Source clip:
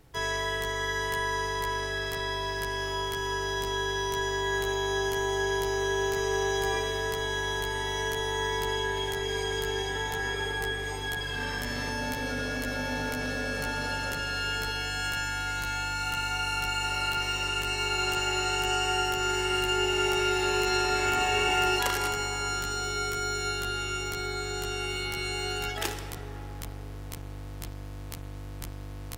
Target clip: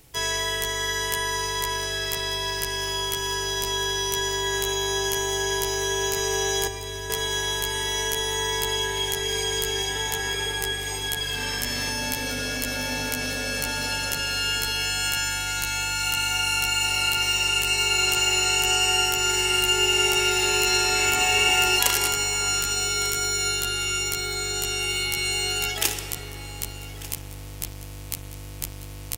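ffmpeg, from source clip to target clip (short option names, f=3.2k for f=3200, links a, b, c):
-filter_complex "[0:a]asettb=1/sr,asplit=3[a][b][c];[a]atrim=end=6.674[d];[b]atrim=start=6.67:end=7.1,asetpts=PTS-STARTPTS,afade=t=in:d=0.004:c=qsin,afade=t=out:st=0.426:d=0.004:c=qsin,acrossover=split=180[e][f];[f]acompressor=threshold=-38dB:ratio=4[g];[e][g]amix=inputs=2:normalize=0[h];[c]atrim=start=7.096[i];[d][h]acrossfade=d=0.004:c1=hsin:c2=qsin[j];[j][i]acrossfade=d=0.004:c1=qsin:c2=hsin,aexciter=amount=2.7:drive=4.6:freq=2.2k,asplit=2[k][l];[l]aecho=0:1:1194:0.15[m];[k][m]amix=inputs=2:normalize=0,volume=1dB"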